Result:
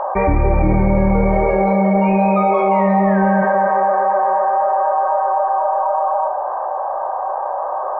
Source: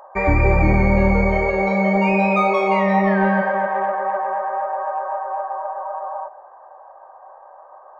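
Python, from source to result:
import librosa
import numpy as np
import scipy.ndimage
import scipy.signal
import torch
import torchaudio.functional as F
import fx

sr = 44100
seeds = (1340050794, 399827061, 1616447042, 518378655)

y = scipy.signal.sosfilt(scipy.signal.butter(2, 1300.0, 'lowpass', fs=sr, output='sos'), x)
y = fx.doubler(y, sr, ms=32.0, db=-8)
y = fx.env_flatten(y, sr, amount_pct=70)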